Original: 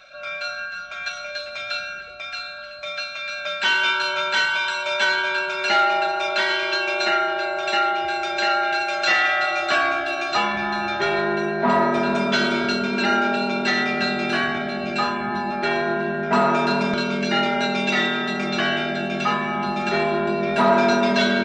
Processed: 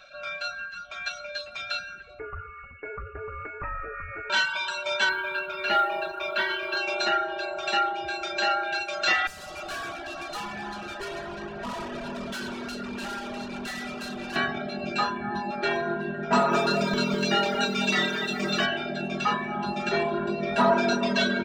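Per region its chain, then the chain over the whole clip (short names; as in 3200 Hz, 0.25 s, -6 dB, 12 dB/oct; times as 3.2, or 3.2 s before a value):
2.19–4.3 compressor, threshold -26 dBFS + inverted band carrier 2800 Hz
5.09–6.77 LPF 3200 Hz + notch 770 Hz, Q 9.1 + companded quantiser 8-bit
9.27–14.36 high shelf 2800 Hz -4 dB + tube stage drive 28 dB, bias 0.55 + split-band echo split 1300 Hz, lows 0.222 s, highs 95 ms, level -11 dB
16.31–18.66 high shelf 7400 Hz +12 dB + lo-fi delay 0.203 s, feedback 55%, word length 8-bit, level -7 dB
whole clip: reverb removal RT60 1.1 s; low shelf 65 Hz +6 dB; notch 2100 Hz, Q 9; gain -2.5 dB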